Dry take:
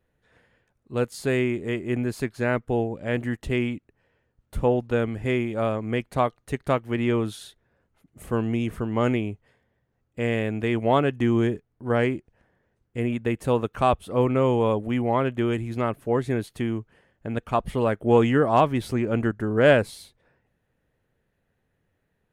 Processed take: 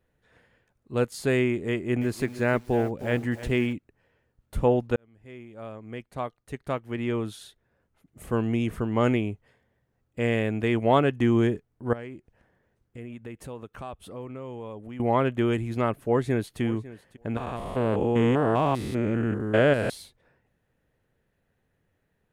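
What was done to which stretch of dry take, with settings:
1.70–3.73 s: bit-crushed delay 311 ms, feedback 35%, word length 7-bit, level -13 dB
4.96–8.71 s: fade in
11.93–15.00 s: compression 2.5:1, threshold -43 dBFS
15.98–16.61 s: echo throw 550 ms, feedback 10%, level -17.5 dB
17.37–19.90 s: spectrogram pixelated in time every 200 ms

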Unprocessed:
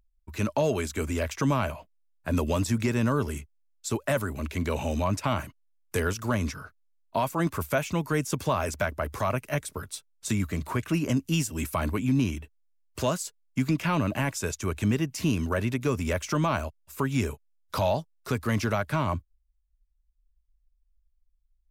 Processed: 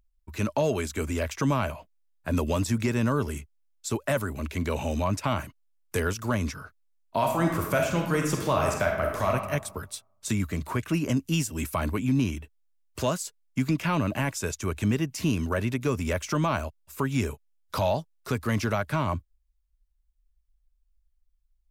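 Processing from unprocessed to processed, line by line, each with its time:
7.16–9.32 s: reverb throw, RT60 1 s, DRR 1 dB

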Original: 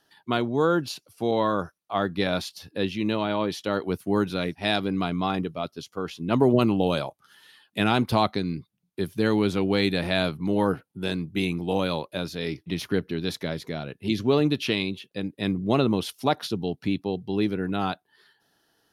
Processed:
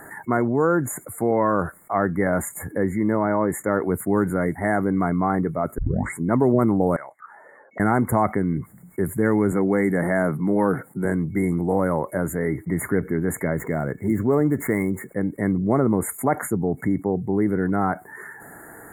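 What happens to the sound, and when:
5.78 s: tape start 0.41 s
6.96–7.80 s: auto-wah 450–2500 Hz, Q 8.6, up, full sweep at -30.5 dBFS
9.52–11.05 s: high-pass 120 Hz 24 dB/octave
13.58–15.09 s: median filter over 5 samples
whole clip: FFT band-reject 2.2–6.8 kHz; level flattener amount 50%

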